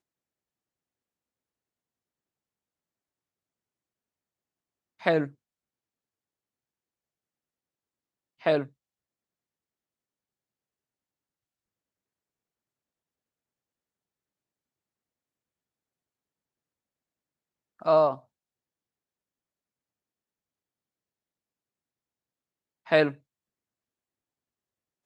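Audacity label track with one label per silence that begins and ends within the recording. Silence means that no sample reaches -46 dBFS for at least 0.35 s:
5.310000	8.410000	silence
8.670000	17.800000	silence
18.200000	22.870000	silence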